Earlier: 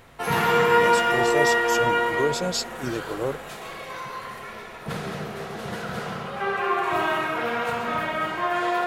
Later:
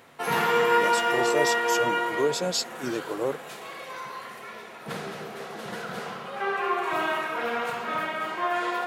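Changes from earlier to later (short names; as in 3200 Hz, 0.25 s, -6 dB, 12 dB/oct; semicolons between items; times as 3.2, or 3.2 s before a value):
background: send -6.5 dB; master: add HPF 200 Hz 12 dB/oct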